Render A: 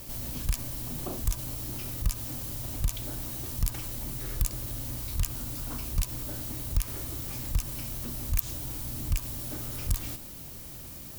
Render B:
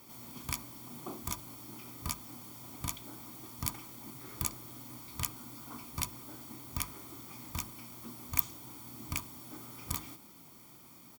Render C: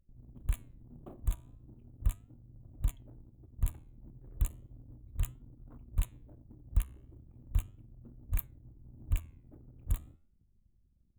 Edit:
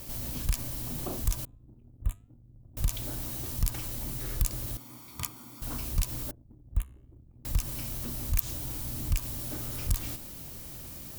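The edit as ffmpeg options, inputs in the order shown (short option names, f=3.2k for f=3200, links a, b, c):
-filter_complex "[2:a]asplit=2[a][b];[0:a]asplit=4[c][d][e][f];[c]atrim=end=1.452[g];[a]atrim=start=1.448:end=2.772[h];[d]atrim=start=2.768:end=4.772[i];[1:a]atrim=start=4.768:end=5.622[j];[e]atrim=start=5.618:end=6.312[k];[b]atrim=start=6.308:end=7.452[l];[f]atrim=start=7.448[m];[g][h]acrossfade=d=0.004:c1=hsin:c2=hsin[n];[n][i]acrossfade=d=0.004:c1=hsin:c2=hsin[o];[o][j]acrossfade=d=0.004:c1=hsin:c2=hsin[p];[p][k]acrossfade=d=0.004:c1=hsin:c2=hsin[q];[q][l]acrossfade=d=0.004:c1=hsin:c2=hsin[r];[r][m]acrossfade=d=0.004:c1=hsin:c2=hsin"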